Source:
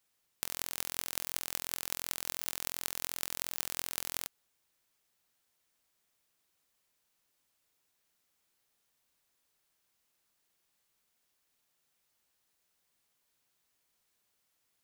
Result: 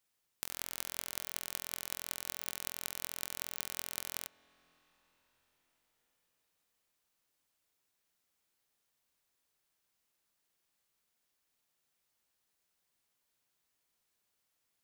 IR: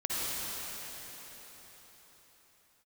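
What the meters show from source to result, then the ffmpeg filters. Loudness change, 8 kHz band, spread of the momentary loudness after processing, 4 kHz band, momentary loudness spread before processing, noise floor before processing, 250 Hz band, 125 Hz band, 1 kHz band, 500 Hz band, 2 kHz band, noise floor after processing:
-3.5 dB, -3.5 dB, 2 LU, -3.5 dB, 2 LU, -78 dBFS, -3.5 dB, -3.5 dB, -3.0 dB, -3.0 dB, -3.5 dB, -82 dBFS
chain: -filter_complex "[0:a]asplit=2[s0][s1];[1:a]atrim=start_sample=2205,asetrate=33075,aresample=44100,lowpass=3200[s2];[s1][s2]afir=irnorm=-1:irlink=0,volume=0.0316[s3];[s0][s3]amix=inputs=2:normalize=0,volume=0.668"

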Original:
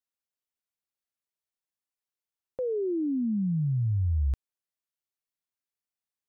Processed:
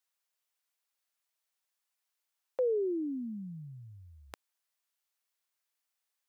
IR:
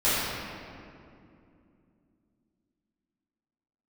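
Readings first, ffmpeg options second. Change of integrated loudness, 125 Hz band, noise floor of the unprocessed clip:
-6.0 dB, -21.0 dB, under -85 dBFS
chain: -af "highpass=660,volume=2.37"

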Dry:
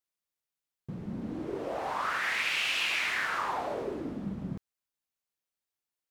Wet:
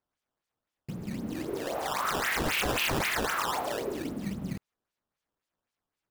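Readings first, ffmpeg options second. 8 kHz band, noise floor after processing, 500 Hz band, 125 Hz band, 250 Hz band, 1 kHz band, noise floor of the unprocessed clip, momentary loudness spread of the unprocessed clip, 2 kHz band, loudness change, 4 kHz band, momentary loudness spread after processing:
+7.5 dB, under -85 dBFS, +3.5 dB, +4.0 dB, +3.0 dB, +2.0 dB, under -85 dBFS, 13 LU, -1.5 dB, +1.0 dB, -0.5 dB, 12 LU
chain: -af "acrusher=samples=12:mix=1:aa=0.000001:lfo=1:lforange=19.2:lforate=3.8,volume=1.19"

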